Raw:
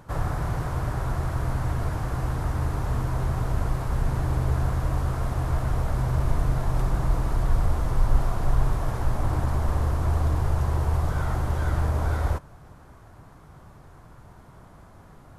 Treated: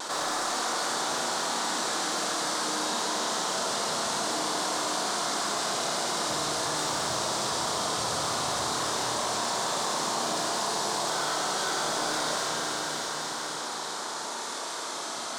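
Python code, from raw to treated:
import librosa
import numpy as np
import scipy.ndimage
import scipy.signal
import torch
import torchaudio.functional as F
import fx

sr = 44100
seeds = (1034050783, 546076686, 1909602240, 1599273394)

y = fx.spec_gate(x, sr, threshold_db=-10, keep='weak')
y = fx.weighting(y, sr, curve='A')
y = fx.dereverb_blind(y, sr, rt60_s=0.65)
y = fx.band_shelf(y, sr, hz=5500.0, db=14.5, octaves=1.7)
y = np.clip(10.0 ** (29.5 / 20.0) * y, -1.0, 1.0) / 10.0 ** (29.5 / 20.0)
y = fx.vibrato(y, sr, rate_hz=0.51, depth_cents=16.0)
y = fx.rev_schroeder(y, sr, rt60_s=3.7, comb_ms=26, drr_db=-4.5)
y = fx.env_flatten(y, sr, amount_pct=70)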